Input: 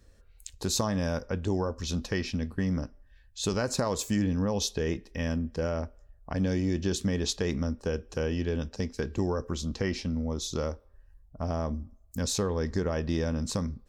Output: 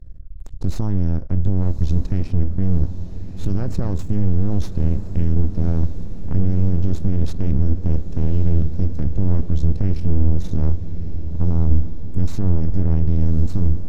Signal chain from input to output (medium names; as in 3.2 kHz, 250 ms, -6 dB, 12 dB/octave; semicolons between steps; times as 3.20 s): tone controls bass +13 dB, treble 0 dB; half-wave rectifier; peak limiter -16.5 dBFS, peak gain reduction 10 dB; tilt EQ -3 dB/octave; echo that smears into a reverb 1168 ms, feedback 65%, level -12 dB; trim -1 dB